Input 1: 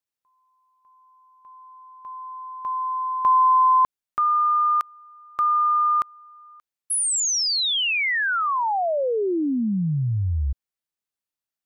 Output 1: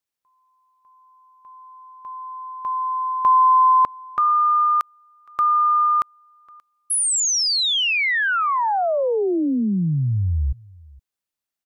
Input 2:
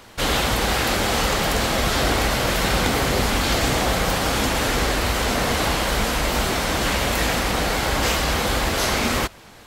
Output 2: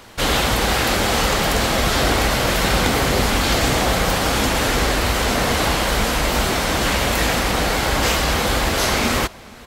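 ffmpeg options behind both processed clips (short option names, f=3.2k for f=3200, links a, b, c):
-filter_complex "[0:a]asplit=2[a][b];[b]adelay=466.5,volume=-24dB,highshelf=f=4k:g=-10.5[c];[a][c]amix=inputs=2:normalize=0,volume=2.5dB"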